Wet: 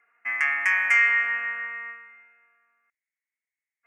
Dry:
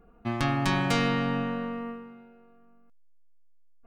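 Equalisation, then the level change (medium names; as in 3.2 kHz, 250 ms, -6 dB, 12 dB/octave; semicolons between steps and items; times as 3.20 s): resonant high-pass 2 kHz, resonance Q 8.5; Butterworth band-stop 3.9 kHz, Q 0.88; distance through air 55 m; +4.0 dB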